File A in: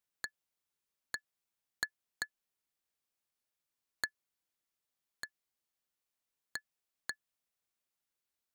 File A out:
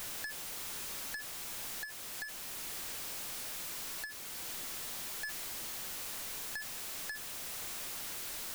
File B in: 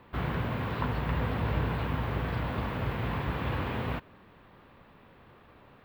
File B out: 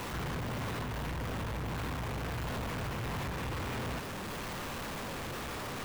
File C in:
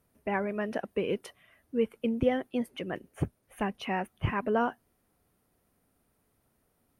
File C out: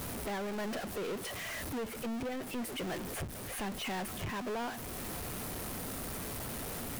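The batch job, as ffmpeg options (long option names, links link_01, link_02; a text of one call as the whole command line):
ffmpeg -i in.wav -af "aeval=exprs='val(0)+0.5*0.0224*sgn(val(0))':channel_layout=same,alimiter=limit=-22.5dB:level=0:latency=1:release=465,aeval=exprs='(tanh(50.1*val(0)+0.15)-tanh(0.15))/50.1':channel_layout=same" out.wav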